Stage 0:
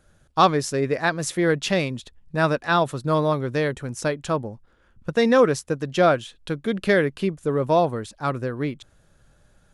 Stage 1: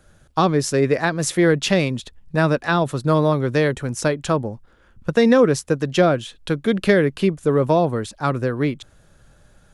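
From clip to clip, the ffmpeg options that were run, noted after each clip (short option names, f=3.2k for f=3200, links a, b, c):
-filter_complex "[0:a]acrossover=split=430[a][b];[b]acompressor=threshold=-23dB:ratio=6[c];[a][c]amix=inputs=2:normalize=0,volume=5.5dB"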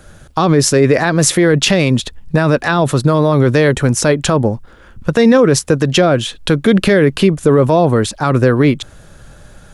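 -af "alimiter=level_in=14dB:limit=-1dB:release=50:level=0:latency=1,volume=-1dB"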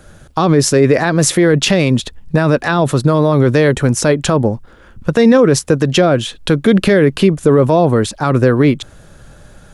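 -af "equalizer=f=300:w=0.41:g=2,volume=-1.5dB"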